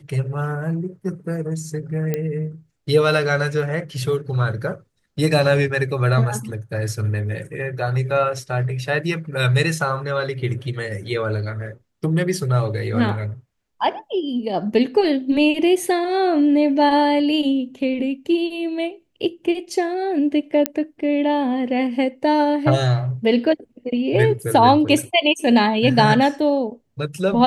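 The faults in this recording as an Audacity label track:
2.140000	2.140000	pop -10 dBFS
20.660000	20.660000	pop -2 dBFS

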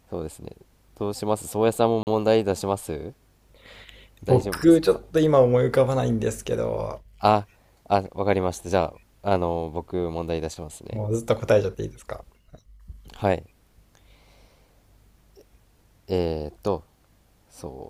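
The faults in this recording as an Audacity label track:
2.030000	2.070000	gap 39 ms

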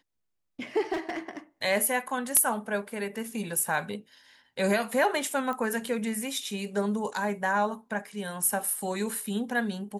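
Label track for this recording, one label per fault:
0.920000	1.370000	clipped -27 dBFS
5.530000	5.530000	pop -22 dBFS

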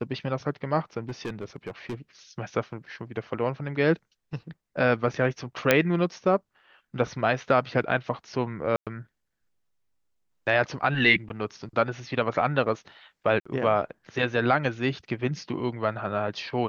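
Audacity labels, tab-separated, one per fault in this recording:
1.090000	1.950000	clipped -28 dBFS
5.710000	5.710000	pop -4 dBFS
8.760000	8.870000	gap 0.107 s
13.400000	13.460000	gap 55 ms

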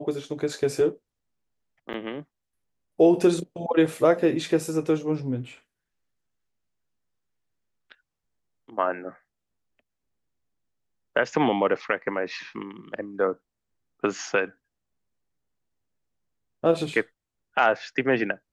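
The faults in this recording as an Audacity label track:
1.930000	1.940000	gap 8.3 ms

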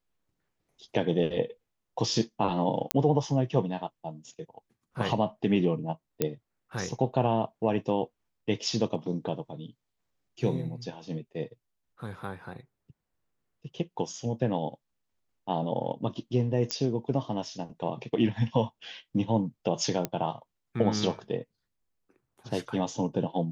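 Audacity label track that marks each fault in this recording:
2.910000	2.910000	pop -7 dBFS
6.220000	6.220000	pop -11 dBFS
16.710000	16.710000	pop -13 dBFS
20.050000	20.050000	pop -13 dBFS

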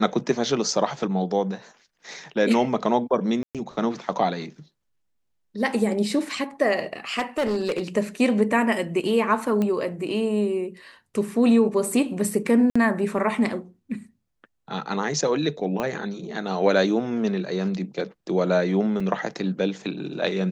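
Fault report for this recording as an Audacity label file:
3.430000	3.550000	gap 0.117 s
7.180000	7.820000	clipped -20 dBFS
9.620000	9.620000	pop -15 dBFS
12.700000	12.760000	gap 55 ms
15.800000	15.800000	pop -14 dBFS
19.000000	19.000000	gap 3.8 ms

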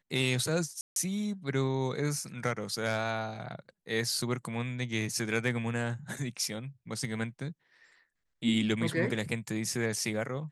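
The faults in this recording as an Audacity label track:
0.810000	0.960000	gap 0.152 s

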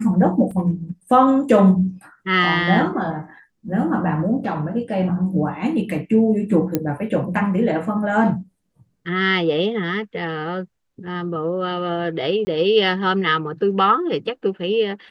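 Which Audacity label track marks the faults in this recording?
0.510000	0.510000	gap 3.7 ms
6.750000	6.750000	pop -6 dBFS
12.450000	12.470000	gap 20 ms

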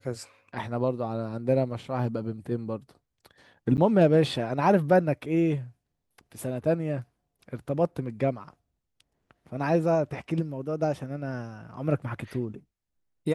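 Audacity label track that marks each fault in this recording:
3.770000	3.780000	gap 9.1 ms

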